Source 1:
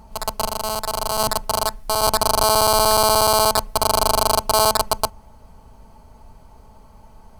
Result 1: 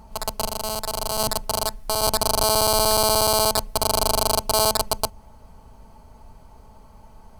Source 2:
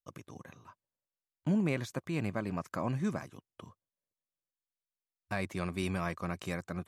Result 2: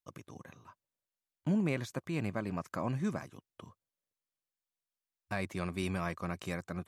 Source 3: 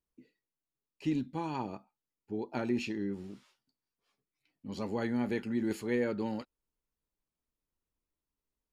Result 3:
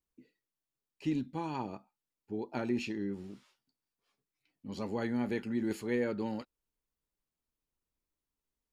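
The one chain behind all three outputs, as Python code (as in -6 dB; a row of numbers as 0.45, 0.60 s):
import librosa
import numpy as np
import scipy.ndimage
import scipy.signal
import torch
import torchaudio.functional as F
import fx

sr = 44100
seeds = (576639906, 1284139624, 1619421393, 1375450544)

y = fx.dynamic_eq(x, sr, hz=1200.0, q=1.0, threshold_db=-31.0, ratio=4.0, max_db=-6)
y = y * 10.0 ** (-1.0 / 20.0)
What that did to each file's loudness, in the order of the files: -2.5, -1.0, -1.0 LU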